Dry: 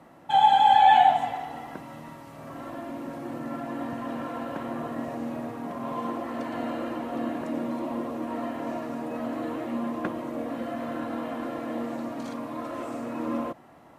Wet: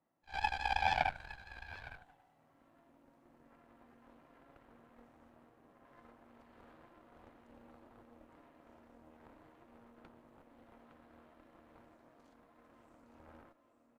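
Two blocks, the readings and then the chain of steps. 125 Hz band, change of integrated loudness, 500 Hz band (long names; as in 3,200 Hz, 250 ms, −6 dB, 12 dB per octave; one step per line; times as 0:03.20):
−13.0 dB, −9.5 dB, −21.5 dB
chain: on a send: single-tap delay 861 ms −6.5 dB
on the sum: dynamic equaliser 1,700 Hz, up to −4 dB, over −39 dBFS, Q 1.9
harmonic generator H 3 −9 dB, 4 −23 dB, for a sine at −6.5 dBFS
echo ahead of the sound 63 ms −16.5 dB
level −7 dB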